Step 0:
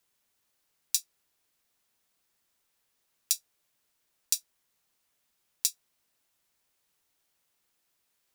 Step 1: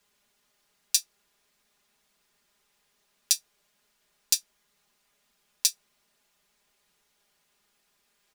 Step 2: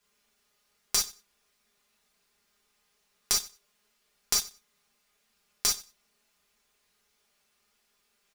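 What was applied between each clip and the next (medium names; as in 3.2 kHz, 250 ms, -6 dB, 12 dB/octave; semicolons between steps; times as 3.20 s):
treble shelf 9.1 kHz -10 dB; comb 4.9 ms, depth 76%; trim +6.5 dB
tracing distortion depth 0.024 ms; feedback delay 93 ms, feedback 16%, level -19 dB; gated-style reverb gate 80 ms flat, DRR -2 dB; trim -5 dB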